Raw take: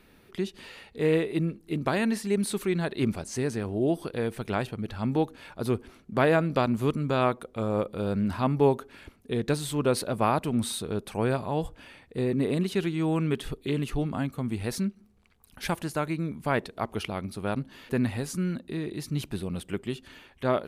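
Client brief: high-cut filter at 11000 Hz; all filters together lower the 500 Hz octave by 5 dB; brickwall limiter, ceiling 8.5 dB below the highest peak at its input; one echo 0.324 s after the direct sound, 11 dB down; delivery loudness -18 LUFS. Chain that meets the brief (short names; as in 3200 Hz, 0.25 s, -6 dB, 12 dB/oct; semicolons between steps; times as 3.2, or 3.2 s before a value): LPF 11000 Hz; bell 500 Hz -6.5 dB; limiter -21 dBFS; echo 0.324 s -11 dB; gain +14.5 dB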